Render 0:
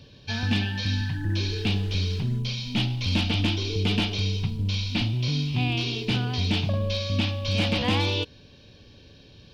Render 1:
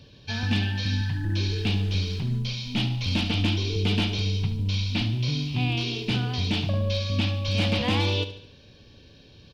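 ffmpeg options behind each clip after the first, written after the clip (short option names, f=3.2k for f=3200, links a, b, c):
-af "aecho=1:1:72|144|216|288|360:0.224|0.11|0.0538|0.0263|0.0129,volume=-1dB"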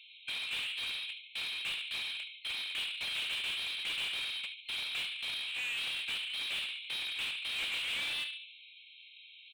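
-filter_complex "[0:a]adynamicsmooth=sensitivity=5.5:basefreq=3.3k,afftfilt=real='re*between(b*sr/4096,2100,4200)':imag='im*between(b*sr/4096,2100,4200)':win_size=4096:overlap=0.75,asplit=2[a][b];[b]highpass=f=720:p=1,volume=27dB,asoftclip=type=tanh:threshold=-19.5dB[c];[a][c]amix=inputs=2:normalize=0,lowpass=f=2.7k:p=1,volume=-6dB,volume=-7.5dB"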